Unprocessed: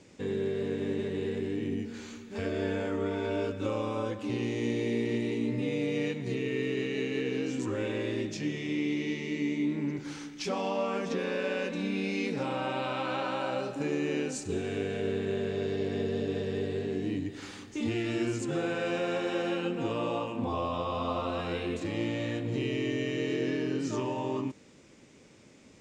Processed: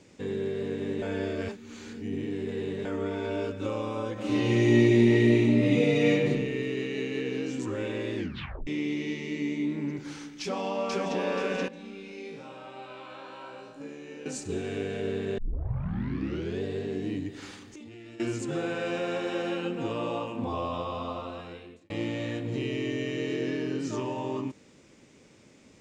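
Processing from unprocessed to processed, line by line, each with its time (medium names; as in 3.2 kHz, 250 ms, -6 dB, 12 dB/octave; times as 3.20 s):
1.02–2.85 s: reverse
4.13–6.27 s: reverb throw, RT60 0.97 s, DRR -7.5 dB
8.16 s: tape stop 0.51 s
10.41–11.18 s: echo throw 480 ms, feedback 30%, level -1.5 dB
11.68–14.26 s: feedback comb 56 Hz, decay 0.78 s, mix 90%
15.38 s: tape start 1.24 s
17.54–18.20 s: compression 16:1, threshold -42 dBFS
20.74–21.90 s: fade out linear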